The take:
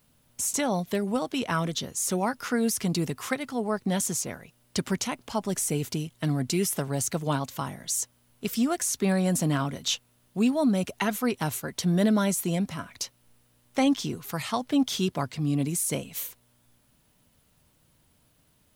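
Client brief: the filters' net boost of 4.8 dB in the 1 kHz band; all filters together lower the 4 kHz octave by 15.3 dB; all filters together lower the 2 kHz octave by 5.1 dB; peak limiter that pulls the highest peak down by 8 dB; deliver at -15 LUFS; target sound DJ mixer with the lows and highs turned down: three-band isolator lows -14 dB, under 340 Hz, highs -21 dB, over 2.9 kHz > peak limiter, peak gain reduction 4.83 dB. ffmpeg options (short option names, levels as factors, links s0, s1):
-filter_complex "[0:a]equalizer=f=1000:t=o:g=8.5,equalizer=f=2000:t=o:g=-8,equalizer=f=4000:t=o:g=-6,alimiter=limit=0.119:level=0:latency=1,acrossover=split=340 2900:gain=0.2 1 0.0891[s0][s1][s2];[s0][s1][s2]amix=inputs=3:normalize=0,volume=10.6,alimiter=limit=0.794:level=0:latency=1"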